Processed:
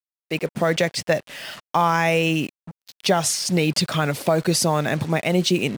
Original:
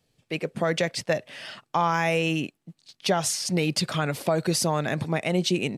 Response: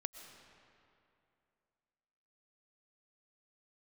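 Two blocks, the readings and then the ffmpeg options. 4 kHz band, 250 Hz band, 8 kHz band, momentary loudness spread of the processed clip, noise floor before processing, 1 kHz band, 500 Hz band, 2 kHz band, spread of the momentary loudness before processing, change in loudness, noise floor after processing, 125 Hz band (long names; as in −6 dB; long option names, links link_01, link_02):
+4.5 dB, +4.5 dB, +4.5 dB, 8 LU, −76 dBFS, +4.5 dB, +4.5 dB, +4.5 dB, 8 LU, +4.5 dB, below −85 dBFS, +4.5 dB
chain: -af "acrusher=bits=6:mix=0:aa=0.5,volume=4.5dB"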